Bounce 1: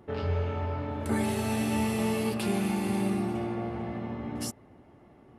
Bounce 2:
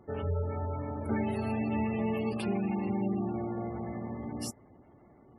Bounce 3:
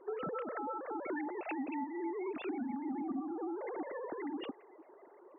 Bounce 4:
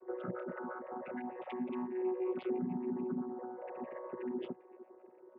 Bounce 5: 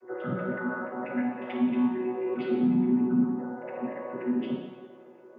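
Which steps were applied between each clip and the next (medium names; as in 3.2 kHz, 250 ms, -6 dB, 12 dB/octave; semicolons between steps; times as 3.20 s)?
spectral gate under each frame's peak -25 dB strong; trim -2.5 dB
formants replaced by sine waves; compression, threshold -39 dBFS, peak gain reduction 15.5 dB; band noise 310–1100 Hz -69 dBFS; trim +2.5 dB
vocoder on a held chord bare fifth, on B2; trim +1 dB
reverberation RT60 1.1 s, pre-delay 3 ms, DRR -3 dB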